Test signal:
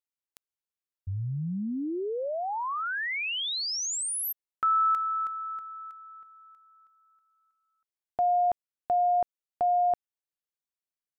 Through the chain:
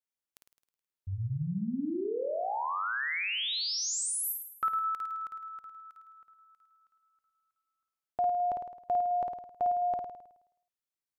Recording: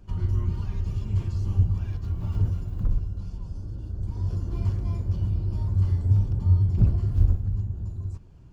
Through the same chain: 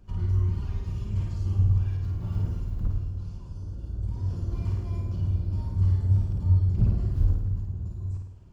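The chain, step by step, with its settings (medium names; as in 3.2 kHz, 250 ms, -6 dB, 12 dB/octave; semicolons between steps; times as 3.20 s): flutter echo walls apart 9.1 m, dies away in 0.76 s; trim -3.5 dB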